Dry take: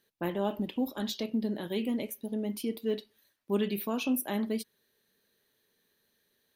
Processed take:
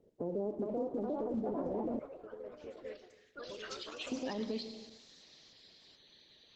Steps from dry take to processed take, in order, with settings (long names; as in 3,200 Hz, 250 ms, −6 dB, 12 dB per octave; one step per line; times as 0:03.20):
spectral magnitudes quantised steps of 30 dB
low-pass filter sweep 460 Hz → 4,200 Hz, 0:01.20–0:03.96
parametric band 1,500 Hz −14 dB 0.26 octaves
convolution reverb RT60 0.80 s, pre-delay 5 ms, DRR 11 dB
downward compressor 3 to 1, threshold −46 dBFS, peak gain reduction 18 dB
delay with pitch and tempo change per echo 444 ms, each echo +3 semitones, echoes 3
0:01.99–0:04.12: drawn EQ curve 100 Hz 0 dB, 200 Hz −27 dB, 320 Hz −19 dB, 540 Hz −9 dB, 830 Hz −26 dB, 1,400 Hz −2 dB, 2,300 Hz −6 dB, 3,500 Hz −9 dB, 6,800 Hz −3 dB
brickwall limiter −39 dBFS, peak gain reduction 8.5 dB
level +11 dB
Opus 12 kbit/s 48,000 Hz